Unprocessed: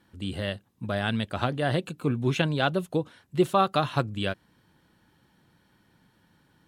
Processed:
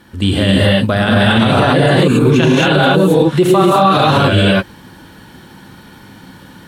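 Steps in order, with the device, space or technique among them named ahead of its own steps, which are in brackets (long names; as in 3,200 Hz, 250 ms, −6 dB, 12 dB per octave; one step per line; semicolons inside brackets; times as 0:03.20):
reverb whose tail is shaped and stops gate 300 ms rising, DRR −6.5 dB
loud club master (downward compressor 2 to 1, threshold −21 dBFS, peak gain reduction 6.5 dB; hard clipping −11 dBFS, distortion −42 dB; boost into a limiter +19.5 dB)
level −1.5 dB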